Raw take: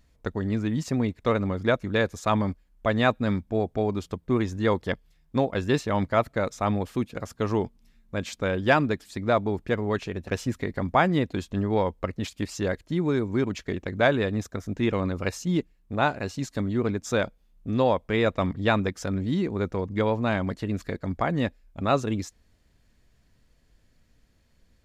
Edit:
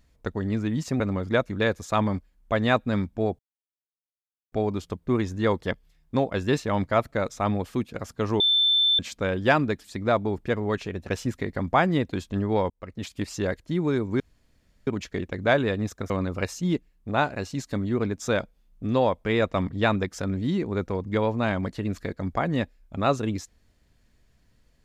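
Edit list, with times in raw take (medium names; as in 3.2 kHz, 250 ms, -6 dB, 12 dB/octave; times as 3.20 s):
1.00–1.34 s: delete
3.73 s: insert silence 1.13 s
7.61–8.20 s: bleep 3.54 kHz -17.5 dBFS
11.91–12.37 s: fade in
13.41 s: insert room tone 0.67 s
14.64–14.94 s: delete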